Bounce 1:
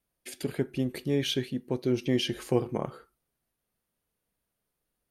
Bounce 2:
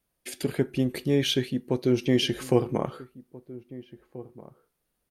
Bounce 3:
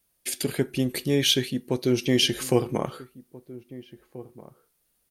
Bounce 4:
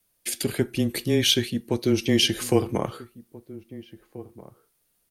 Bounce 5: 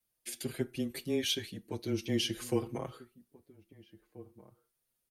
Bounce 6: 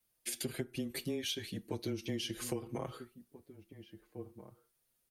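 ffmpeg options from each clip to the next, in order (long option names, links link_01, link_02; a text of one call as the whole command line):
ffmpeg -i in.wav -filter_complex "[0:a]asplit=2[link_01][link_02];[link_02]adelay=1633,volume=-18dB,highshelf=frequency=4000:gain=-36.7[link_03];[link_01][link_03]amix=inputs=2:normalize=0,volume=4dB" out.wav
ffmpeg -i in.wav -af "highshelf=frequency=3000:gain=10.5" out.wav
ffmpeg -i in.wav -af "afreqshift=-16,volume=1dB" out.wav
ffmpeg -i in.wav -filter_complex "[0:a]asplit=2[link_01][link_02];[link_02]adelay=6.1,afreqshift=0.45[link_03];[link_01][link_03]amix=inputs=2:normalize=1,volume=-9dB" out.wav
ffmpeg -i in.wav -af "acompressor=threshold=-37dB:ratio=16,volume=3.5dB" out.wav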